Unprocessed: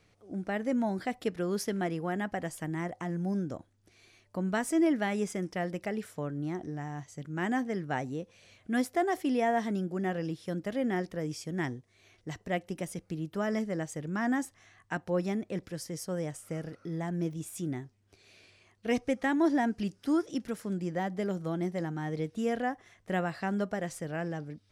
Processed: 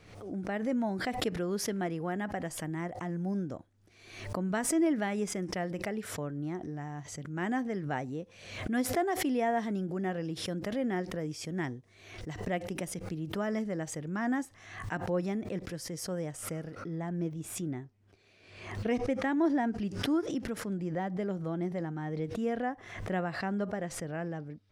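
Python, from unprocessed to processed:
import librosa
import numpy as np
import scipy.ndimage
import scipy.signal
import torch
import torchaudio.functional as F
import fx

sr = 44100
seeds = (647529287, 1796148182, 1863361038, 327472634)

y = fx.high_shelf(x, sr, hz=3800.0, db=fx.steps((0.0, -5.0), (16.81, -11.5)))
y = fx.pre_swell(y, sr, db_per_s=68.0)
y = y * librosa.db_to_amplitude(-1.5)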